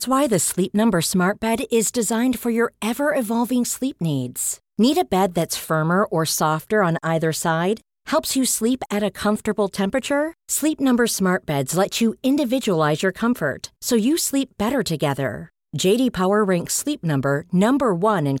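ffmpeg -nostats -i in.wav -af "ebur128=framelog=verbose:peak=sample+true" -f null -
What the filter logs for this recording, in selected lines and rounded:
Integrated loudness:
  I:         -20.7 LUFS
  Threshold: -30.7 LUFS
Loudness range:
  LRA:         1.4 LU
  Threshold: -40.9 LUFS
  LRA low:   -21.6 LUFS
  LRA high:  -20.2 LUFS
Sample peak:
  Peak:       -6.8 dBFS
True peak:
  Peak:       -6.7 dBFS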